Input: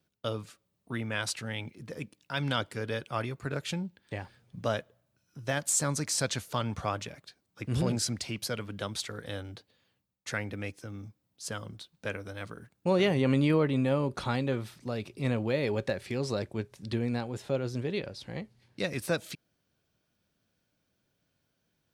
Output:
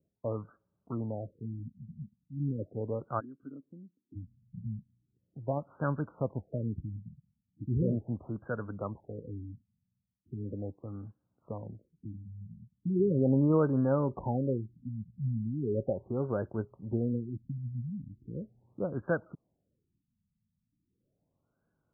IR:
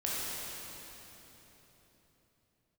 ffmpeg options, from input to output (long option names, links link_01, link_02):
-filter_complex "[0:a]asplit=3[link_01][link_02][link_03];[link_01]afade=type=out:start_time=3.19:duration=0.02[link_04];[link_02]asplit=3[link_05][link_06][link_07];[link_05]bandpass=frequency=270:width_type=q:width=8,volume=0dB[link_08];[link_06]bandpass=frequency=2290:width_type=q:width=8,volume=-6dB[link_09];[link_07]bandpass=frequency=3010:width_type=q:width=8,volume=-9dB[link_10];[link_08][link_09][link_10]amix=inputs=3:normalize=0,afade=type=in:start_time=3.19:duration=0.02,afade=type=out:start_time=4.15:duration=0.02[link_11];[link_03]afade=type=in:start_time=4.15:duration=0.02[link_12];[link_04][link_11][link_12]amix=inputs=3:normalize=0,afftfilt=real='re*lt(b*sr/1024,220*pow(1700/220,0.5+0.5*sin(2*PI*0.38*pts/sr)))':imag='im*lt(b*sr/1024,220*pow(1700/220,0.5+0.5*sin(2*PI*0.38*pts/sr)))':win_size=1024:overlap=0.75"